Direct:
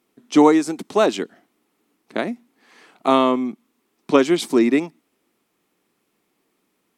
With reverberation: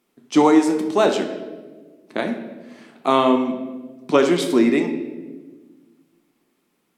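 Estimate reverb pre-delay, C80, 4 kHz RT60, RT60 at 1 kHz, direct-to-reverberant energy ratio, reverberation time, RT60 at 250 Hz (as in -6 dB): 6 ms, 10.0 dB, 0.95 s, 1.1 s, 4.0 dB, 1.4 s, 2.0 s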